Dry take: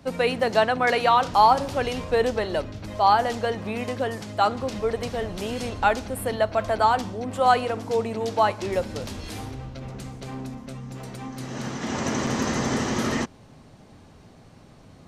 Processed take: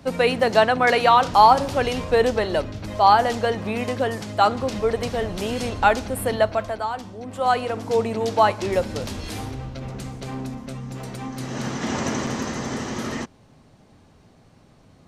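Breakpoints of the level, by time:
0:06.46 +3.5 dB
0:06.87 −8 dB
0:07.98 +3.5 dB
0:11.86 +3.5 dB
0:12.54 −3.5 dB

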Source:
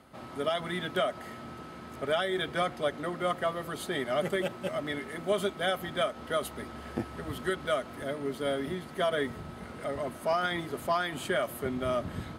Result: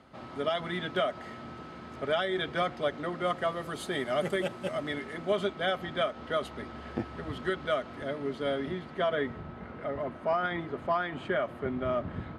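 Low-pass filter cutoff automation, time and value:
0:03.09 5,500 Hz
0:03.81 10,000 Hz
0:04.67 10,000 Hz
0:05.39 4,700 Hz
0:08.50 4,700 Hz
0:09.57 2,300 Hz

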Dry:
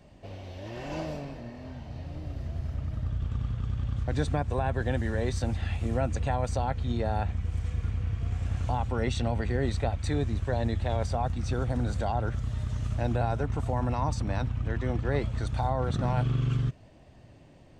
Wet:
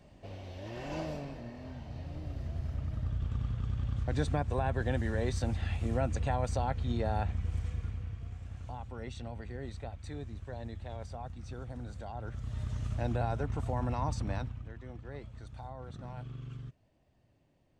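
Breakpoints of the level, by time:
0:07.55 −3 dB
0:08.43 −13.5 dB
0:12.11 −13.5 dB
0:12.61 −4.5 dB
0:14.33 −4.5 dB
0:14.74 −16.5 dB

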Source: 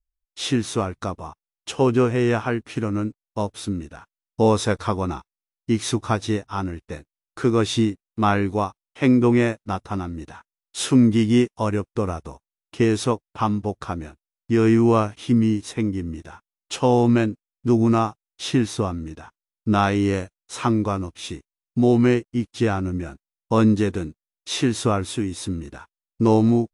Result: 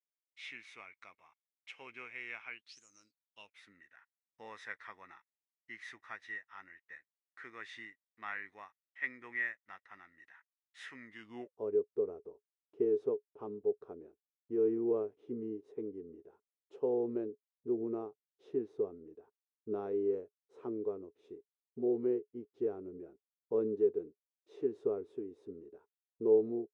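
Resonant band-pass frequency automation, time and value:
resonant band-pass, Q 14
0:02.52 2,200 Hz
0:02.83 7,300 Hz
0:03.64 1,900 Hz
0:11.14 1,900 Hz
0:11.55 420 Hz

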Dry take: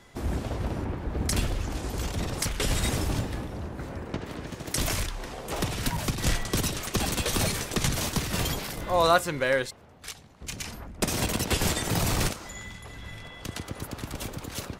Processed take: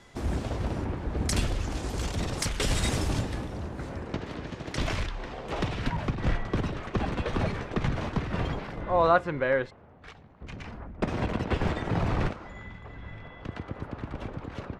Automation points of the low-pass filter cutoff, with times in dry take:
0:03.85 9,000 Hz
0:04.74 3,400 Hz
0:05.65 3,400 Hz
0:06.17 1,800 Hz

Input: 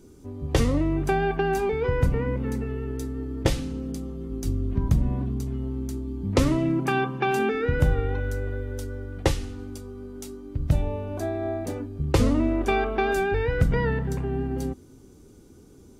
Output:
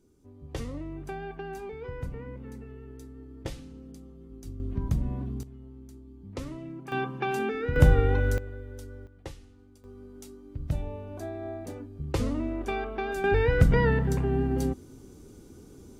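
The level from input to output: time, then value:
−14 dB
from 0:04.60 −6 dB
from 0:05.43 −16.5 dB
from 0:06.92 −5.5 dB
from 0:07.76 +3 dB
from 0:08.38 −9.5 dB
from 0:09.07 −19 dB
from 0:09.84 −8 dB
from 0:13.24 +1.5 dB

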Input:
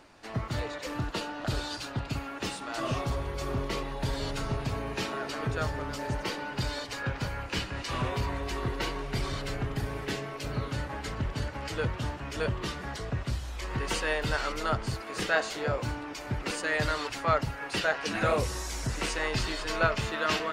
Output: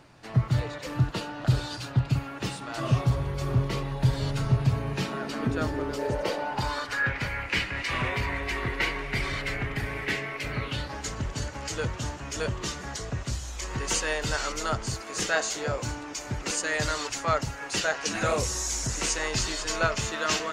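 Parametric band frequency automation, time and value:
parametric band +13.5 dB 0.71 octaves
0:04.88 130 Hz
0:06.42 660 Hz
0:07.14 2,100 Hz
0:10.60 2,100 Hz
0:11.02 6,700 Hz

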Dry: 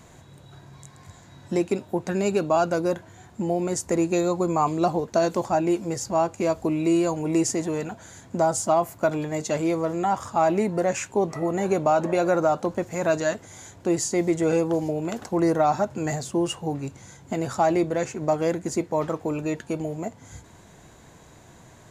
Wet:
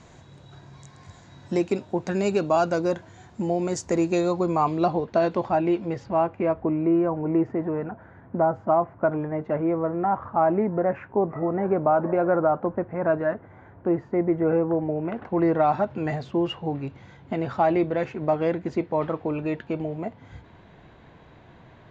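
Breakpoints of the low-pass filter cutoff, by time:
low-pass filter 24 dB per octave
0:03.94 6,500 Hz
0:05.20 3,700 Hz
0:05.85 3,700 Hz
0:06.82 1,700 Hz
0:14.72 1,700 Hz
0:15.73 3,500 Hz

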